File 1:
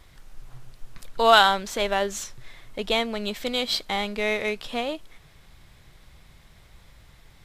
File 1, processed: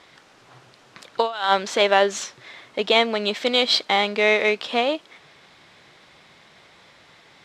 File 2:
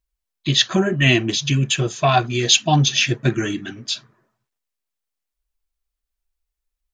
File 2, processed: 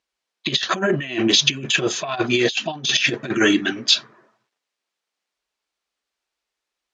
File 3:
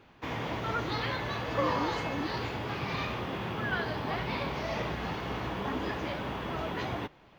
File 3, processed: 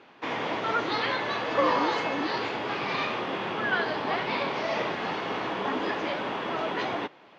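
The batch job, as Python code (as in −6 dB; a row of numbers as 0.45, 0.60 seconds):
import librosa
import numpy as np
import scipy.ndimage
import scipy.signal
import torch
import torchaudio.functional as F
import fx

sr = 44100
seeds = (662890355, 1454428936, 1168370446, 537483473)

y = fx.over_compress(x, sr, threshold_db=-22.0, ratio=-0.5)
y = fx.bandpass_edges(y, sr, low_hz=280.0, high_hz=5500.0)
y = F.gain(torch.from_numpy(y), 6.0).numpy()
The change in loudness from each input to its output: +3.0, −1.0, +5.0 LU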